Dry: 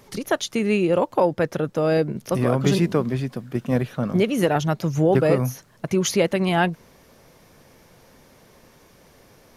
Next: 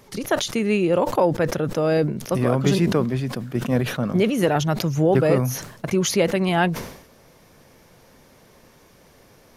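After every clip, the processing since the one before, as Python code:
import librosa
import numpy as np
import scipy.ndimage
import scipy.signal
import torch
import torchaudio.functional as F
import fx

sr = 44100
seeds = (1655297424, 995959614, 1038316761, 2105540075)

y = fx.sustainer(x, sr, db_per_s=80.0)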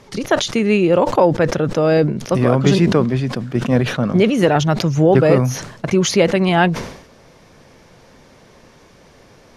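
y = scipy.signal.sosfilt(scipy.signal.butter(2, 6900.0, 'lowpass', fs=sr, output='sos'), x)
y = y * librosa.db_to_amplitude(5.5)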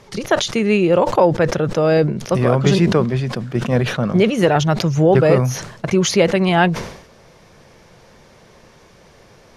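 y = fx.peak_eq(x, sr, hz=270.0, db=-8.0, octaves=0.24)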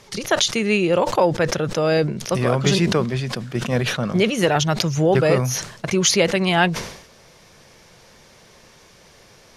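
y = fx.high_shelf(x, sr, hz=2100.0, db=9.5)
y = y * librosa.db_to_amplitude(-4.5)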